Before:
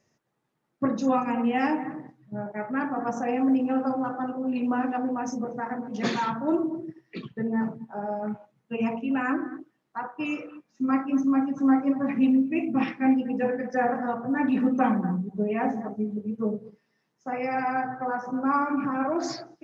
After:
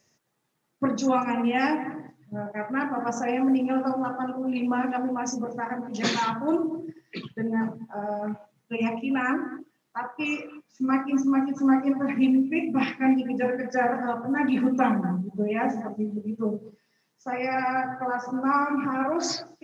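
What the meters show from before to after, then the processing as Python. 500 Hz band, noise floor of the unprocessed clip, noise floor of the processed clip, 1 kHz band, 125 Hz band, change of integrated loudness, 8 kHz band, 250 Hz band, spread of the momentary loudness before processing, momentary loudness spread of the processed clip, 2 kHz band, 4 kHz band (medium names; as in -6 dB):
+0.5 dB, -75 dBFS, -72 dBFS, +1.0 dB, 0.0 dB, +0.5 dB, no reading, 0.0 dB, 12 LU, 12 LU, +3.0 dB, +6.5 dB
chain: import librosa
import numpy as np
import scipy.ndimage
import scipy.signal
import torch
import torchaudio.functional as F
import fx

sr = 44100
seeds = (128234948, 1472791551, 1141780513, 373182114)

y = fx.high_shelf(x, sr, hz=2700.0, db=10.0)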